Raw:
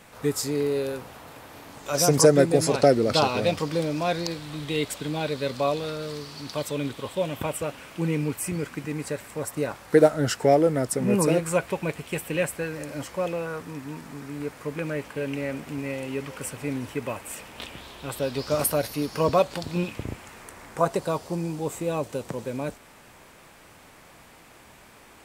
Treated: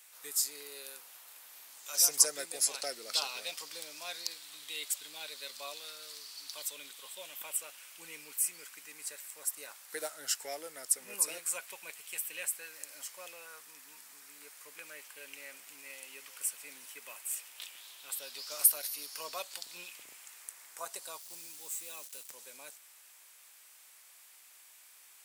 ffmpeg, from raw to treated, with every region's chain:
-filter_complex "[0:a]asettb=1/sr,asplit=3[a][b][c];[a]atrim=end=21.184[d];[b]atrim=start=21.18:end=22.32,asetpts=PTS-STARTPTS,afade=t=in:d=0.004:c=qsin,afade=t=out:st=1.136:d=0.004:c=qsin,equalizer=f=680:w=0.89:g=-5,acrusher=bits=6:mix=0:aa=0.5[e];[c]atrim=start=22.316[f];[d][e]acrossfade=d=0.004:c1=hsin:c2=qsin[g];[g][f]acrossfade=d=0.004:c1=qsin:c2=hsin,highpass=f=480:p=1,aderivative"

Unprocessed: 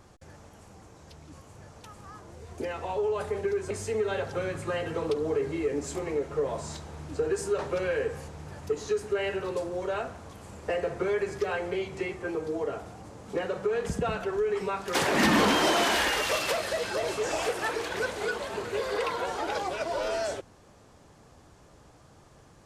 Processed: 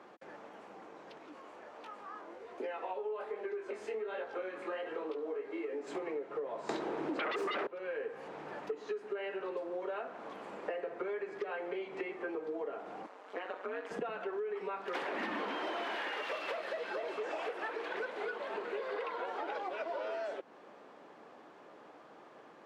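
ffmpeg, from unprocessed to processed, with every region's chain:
-filter_complex "[0:a]asettb=1/sr,asplit=3[a][b][c];[a]atrim=end=1.174[d];[b]atrim=start=1.17:end=5.87,asetpts=PTS-STARTPTS,afade=t=in:d=0.004:c=qsin,afade=t=out:st=4.696:d=0.004:c=qsin,equalizer=f=150:t=o:w=0.69:g=-12.5,flanger=delay=18.5:depth=5.1:speed=1.3,acompressor=mode=upward:threshold=-45dB:ratio=2.5:attack=3.2:release=140:knee=2.83:detection=peak[e];[c]atrim=start=5.866[f];[d][e]acrossfade=d=0.004:c1=hsin:c2=qsin[g];[g][f]acrossfade=d=0.004:c1=qsin:c2=hsin,asettb=1/sr,asplit=3[h][i][j];[h]atrim=end=6.694[k];[i]atrim=start=6.69:end=7.67,asetpts=PTS-STARTPTS,afade=t=in:d=0.004:c=qsin,afade=t=out:st=0.976:d=0.004:c=qsin,equalizer=f=350:t=o:w=0.82:g=9.5,aeval=exprs='0.266*sin(PI/2*7.08*val(0)/0.266)':c=same[l];[j]atrim=start=7.666[m];[k][l]acrossfade=d=0.004:c1=hsin:c2=qsin[n];[n][m]acrossfade=d=0.004:c1=qsin:c2=hsin,asettb=1/sr,asplit=3[o][p][q];[o]atrim=end=13.064[r];[p]atrim=start=13.06:end=13.91,asetpts=PTS-STARTPTS,afade=t=in:d=0.004:c=qsin,afade=t=out:st=0.846:d=0.004:c=qsin,highpass=640,aecho=1:1:6.5:0.33,atrim=end_sample=37485,tremolo=f=190:d=0.919[s];[q]atrim=start=13.906[t];[r][s]acrossfade=d=0.004:c1=hsin:c2=qsin[u];[u][t]acrossfade=d=0.004:c1=qsin:c2=hsin,highpass=180,acrossover=split=230 3300:gain=0.0631 1 0.0708[v][w][x];[v][w][x]amix=inputs=3:normalize=0,acompressor=threshold=-40dB:ratio=6,volume=3.5dB"

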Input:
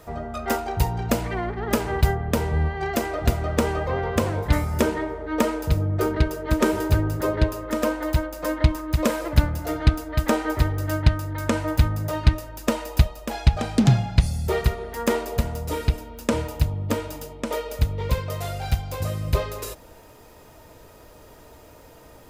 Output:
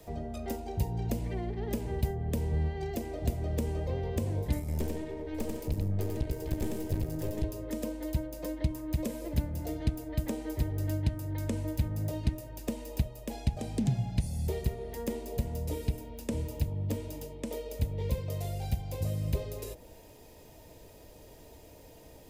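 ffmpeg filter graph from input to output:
-filter_complex "[0:a]asettb=1/sr,asplit=3[a][b][c];[a]atrim=end=4.594[d];[b]atrim=start=4.59:end=7.44,asetpts=PTS-STARTPTS,afade=t=in:d=0.004:c=qsin,afade=t=out:st=2.846:d=0.004:c=qsin,aecho=1:1:91|753:0.631|0.211,atrim=end_sample=125685,acompressor=mode=upward:threshold=-21dB:ratio=2.5:attack=3.2:release=140:knee=2.83:detection=peak,aeval=exprs='(tanh(7.08*val(0)+0.75)-tanh(0.75))/7.08':c=same[e];[c]atrim=start=7.436[f];[d][e]acrossfade=d=0.004:c1=hsin:c2=qsin[g];[g][f]acrossfade=d=0.004:c1=qsin:c2=hsin,equalizer=f=1.3k:t=o:w=0.71:g=-14.5,bandreject=f=122:t=h:w=4,bandreject=f=244:t=h:w=4,bandreject=f=366:t=h:w=4,bandreject=f=488:t=h:w=4,bandreject=f=610:t=h:w=4,bandreject=f=732:t=h:w=4,bandreject=f=854:t=h:w=4,bandreject=f=976:t=h:w=4,bandreject=f=1.098k:t=h:w=4,bandreject=f=1.22k:t=h:w=4,bandreject=f=1.342k:t=h:w=4,bandreject=f=1.464k:t=h:w=4,acrossover=split=170|570|2800|7000[h][i][j][k][l];[h]acompressor=threshold=-24dB:ratio=4[m];[i]acompressor=threshold=-33dB:ratio=4[n];[j]acompressor=threshold=-46dB:ratio=4[o];[k]acompressor=threshold=-53dB:ratio=4[p];[l]acompressor=threshold=-44dB:ratio=4[q];[m][n][o][p][q]amix=inputs=5:normalize=0,volume=-3.5dB"

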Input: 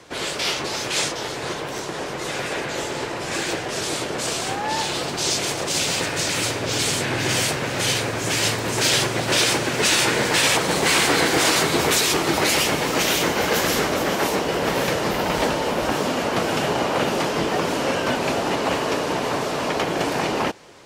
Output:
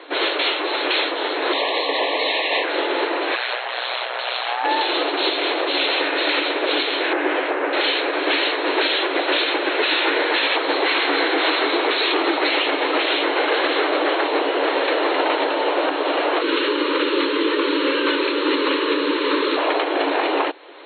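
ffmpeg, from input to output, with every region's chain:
-filter_complex "[0:a]asettb=1/sr,asplit=3[a][b][c];[a]atrim=end=1.534[d];[b]atrim=start=1.53:end=2.64,asetpts=PTS-STARTPTS,afade=t=in:d=0.004:c=qsin,afade=t=out:st=1.106:d=0.004:c=qsin,asuperstop=centerf=1300:order=12:qfactor=2.3,highshelf=f=2.7k:g=10,afreqshift=110[e];[c]atrim=start=2.636[f];[d][e]acrossfade=d=0.004:c1=hsin:c2=qsin[g];[g][f]acrossfade=d=0.004:c1=qsin:c2=hsin,asettb=1/sr,asplit=3[h][i][j];[h]atrim=end=3.354[k];[i]atrim=start=3.35:end=4.65,asetpts=PTS-STARTPTS,afade=t=in:d=0.004:c=qsin,afade=t=out:st=1.296:d=0.004:c=qsin,aeval=exprs='val(0)*sin(2*PI*61*n/s)':c=same,highpass=f=620:w=0.5412,highpass=f=620:w=1.3066[l];[j]atrim=start=4.646[m];[k][l]acrossfade=d=0.004:c1=hsin:c2=qsin[n];[n][m]acrossfade=d=0.004:c1=qsin:c2=hsin,asettb=1/sr,asplit=3[o][p][q];[o]atrim=end=7.134[r];[p]atrim=start=7.13:end=7.73,asetpts=PTS-STARTPTS,afade=t=in:d=0.004:c=qsin,afade=t=out:st=0.596:d=0.004:c=qsin,highpass=100,lowpass=2k,aemphasis=mode=reproduction:type=50fm[s];[q]atrim=start=7.726[t];[r][s]acrossfade=d=0.004:c1=hsin:c2=qsin[u];[u][t]acrossfade=d=0.004:c1=qsin:c2=hsin,asettb=1/sr,asplit=3[v][w][x];[v]atrim=end=16.414[y];[w]atrim=start=16.41:end=19.57,asetpts=PTS-STARTPTS,afade=t=in:d=0.004:c=qsin,afade=t=out:st=3.156:d=0.004:c=qsin,asuperstop=centerf=720:order=4:qfactor=1.7,bass=f=250:g=15,treble=f=4k:g=10[z];[x]atrim=start=19.566[aa];[y][z]acrossfade=d=0.004:c1=hsin:c2=qsin[ab];[ab][aa]acrossfade=d=0.004:c1=qsin:c2=hsin,afftfilt=real='re*between(b*sr/4096,270,4300)':imag='im*between(b*sr/4096,270,4300)':win_size=4096:overlap=0.75,alimiter=limit=-17dB:level=0:latency=1:release=436,volume=7.5dB"

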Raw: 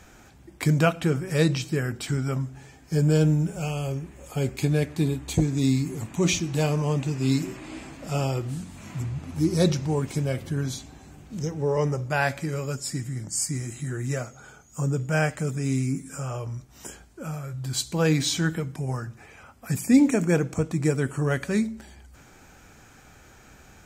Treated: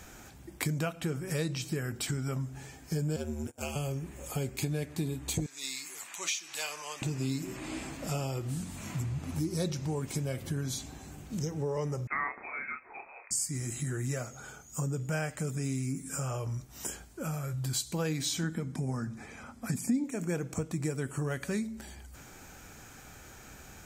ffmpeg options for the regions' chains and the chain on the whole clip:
-filter_complex "[0:a]asettb=1/sr,asplit=3[a][b][c];[a]atrim=end=3.164[d];[b]atrim=start=3.16:end=3.76,asetpts=PTS-STARTPTS,afade=t=in:d=0.004:c=qsin,afade=t=out:st=0.596:d=0.004:c=qsin,highpass=f=290:p=1,agate=range=-26dB:threshold=-36dB:ratio=16:release=100:detection=peak,aeval=exprs='val(0)*sin(2*PI*71*n/s)':c=same[e];[c]atrim=start=3.756[f];[d][e]acrossfade=d=0.004:c1=hsin:c2=qsin[g];[g][f]acrossfade=d=0.004:c1=qsin:c2=hsin,asettb=1/sr,asplit=3[h][i][j];[h]atrim=end=5.464[k];[i]atrim=start=5.46:end=7.02,asetpts=PTS-STARTPTS,afade=t=in:d=0.004:c=qsin,afade=t=out:st=1.556:d=0.004:c=qsin,highpass=1.4k,acompressor=mode=upward:threshold=-40dB:ratio=2.5:attack=3.2:release=140:knee=2.83:detection=peak,highshelf=f=9.6k:g=-6[l];[j]atrim=start=7.016[m];[k][l]acrossfade=d=0.004:c1=hsin:c2=qsin[n];[n][m]acrossfade=d=0.004:c1=qsin:c2=hsin,asettb=1/sr,asplit=3[o][p][q];[o]atrim=end=12.074[r];[p]atrim=start=12.07:end=13.31,asetpts=PTS-STARTPTS,afade=t=in:d=0.004:c=qsin,afade=t=out:st=1.236:d=0.004:c=qsin,highpass=730,asplit=2[s][t];[t]adelay=31,volume=-4.5dB[u];[s][u]amix=inputs=2:normalize=0,atrim=end_sample=54684,lowpass=f=2.3k:t=q:w=0.5098,lowpass=f=2.3k:t=q:w=0.6013,lowpass=f=2.3k:t=q:w=0.9,lowpass=f=2.3k:t=q:w=2.563,afreqshift=-2700[v];[q]atrim=start=13.306[w];[r][v]acrossfade=d=0.004:c1=hsin:c2=qsin[x];[x][w]acrossfade=d=0.004:c1=qsin:c2=hsin,asettb=1/sr,asplit=3[y][z][aa];[y]atrim=end=18.434[ab];[z]atrim=start=18.43:end=20.04,asetpts=PTS-STARTPTS,afade=t=in:d=0.004:c=qsin,afade=t=out:st=1.606:d=0.004:c=qsin,lowpass=9.4k,equalizer=f=230:w=2.8:g=12,bandreject=f=2.8k:w=6.2[ac];[aa]atrim=start=20.036[ad];[ab][ac]acrossfade=d=0.004:c1=hsin:c2=qsin[ae];[ae][ad]acrossfade=d=0.004:c1=qsin:c2=hsin,highshelf=f=7.4k:g=8.5,acompressor=threshold=-31dB:ratio=4"

